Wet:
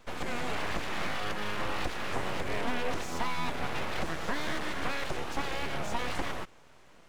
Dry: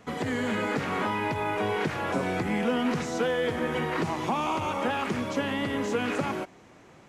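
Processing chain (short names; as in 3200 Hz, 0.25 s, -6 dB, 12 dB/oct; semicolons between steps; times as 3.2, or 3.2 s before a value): full-wave rectifier; gain -2 dB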